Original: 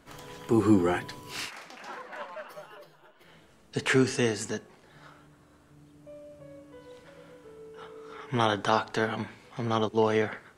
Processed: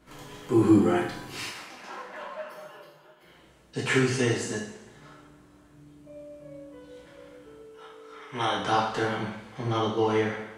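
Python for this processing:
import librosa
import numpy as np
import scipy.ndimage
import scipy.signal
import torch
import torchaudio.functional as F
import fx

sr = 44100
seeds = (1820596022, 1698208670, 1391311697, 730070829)

y = fx.low_shelf(x, sr, hz=340.0, db=-12.0, at=(7.61, 8.57))
y = fx.rev_double_slope(y, sr, seeds[0], early_s=0.71, late_s=1.8, knee_db=-17, drr_db=-5.5)
y = y * librosa.db_to_amplitude(-5.5)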